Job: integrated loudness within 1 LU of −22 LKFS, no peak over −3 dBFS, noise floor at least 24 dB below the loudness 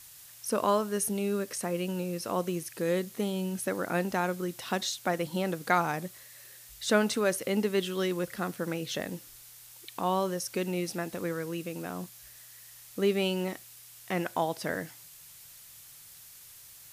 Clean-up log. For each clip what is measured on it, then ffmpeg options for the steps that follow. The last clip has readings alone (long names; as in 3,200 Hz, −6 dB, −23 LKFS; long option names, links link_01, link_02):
background noise floor −51 dBFS; target noise floor −55 dBFS; integrated loudness −31.0 LKFS; sample peak −10.0 dBFS; target loudness −22.0 LKFS
→ -af "afftdn=noise_reduction=6:noise_floor=-51"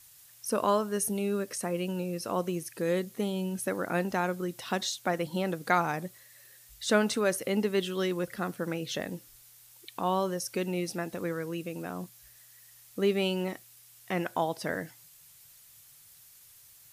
background noise floor −56 dBFS; integrated loudness −31.5 LKFS; sample peak −10.0 dBFS; target loudness −22.0 LKFS
→ -af "volume=9.5dB,alimiter=limit=-3dB:level=0:latency=1"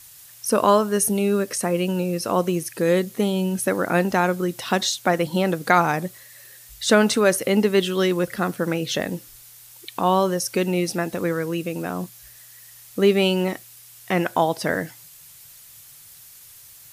integrated loudness −22.0 LKFS; sample peak −3.0 dBFS; background noise floor −47 dBFS